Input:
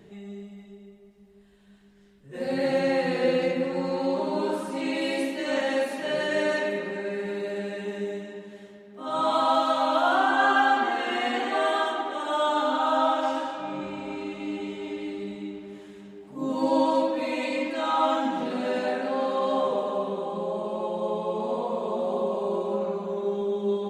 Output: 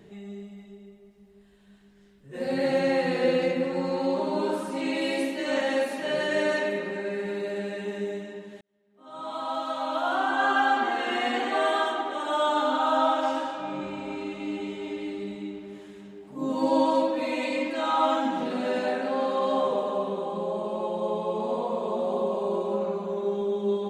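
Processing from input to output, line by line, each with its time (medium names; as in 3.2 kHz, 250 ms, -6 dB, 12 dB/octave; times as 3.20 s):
8.61–11.09 s: fade in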